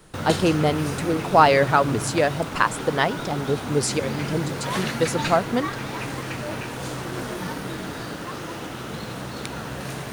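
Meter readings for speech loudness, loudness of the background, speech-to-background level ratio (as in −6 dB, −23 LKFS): −22.5 LKFS, −30.0 LKFS, 7.5 dB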